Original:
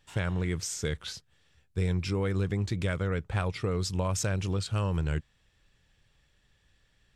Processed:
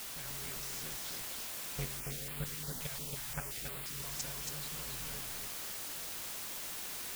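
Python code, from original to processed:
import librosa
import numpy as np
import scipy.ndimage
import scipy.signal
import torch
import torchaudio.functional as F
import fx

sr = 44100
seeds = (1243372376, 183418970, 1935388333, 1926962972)

y = fx.cycle_switch(x, sr, every=2, mode='inverted')
y = scipy.signal.sosfilt(scipy.signal.butter(2, 8100.0, 'lowpass', fs=sr, output='sos'), y)
y = fx.tilt_shelf(y, sr, db=-4.0, hz=1200.0)
y = y + 0.62 * np.pad(y, (int(7.1 * sr / 1000.0), 0))[:len(y)]
y = fx.level_steps(y, sr, step_db=14)
y = fx.quant_dither(y, sr, seeds[0], bits=6, dither='triangular')
y = y + 10.0 ** (-3.5 / 20.0) * np.pad(y, (int(277 * sr / 1000.0), 0))[:len(y)]
y = fx.filter_held_notch(y, sr, hz=5.7, low_hz=290.0, high_hz=5900.0, at=(1.99, 4.03), fade=0.02)
y = F.gain(torch.from_numpy(y), -8.0).numpy()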